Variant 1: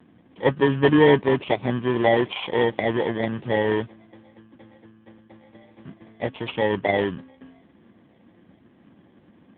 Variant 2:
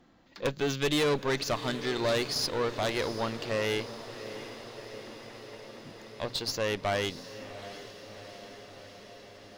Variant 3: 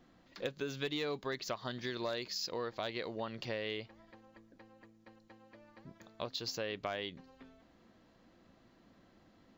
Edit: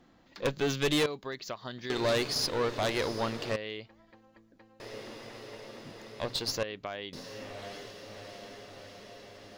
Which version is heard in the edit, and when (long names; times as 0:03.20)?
2
0:01.06–0:01.90: punch in from 3
0:03.56–0:04.80: punch in from 3
0:06.63–0:07.13: punch in from 3
not used: 1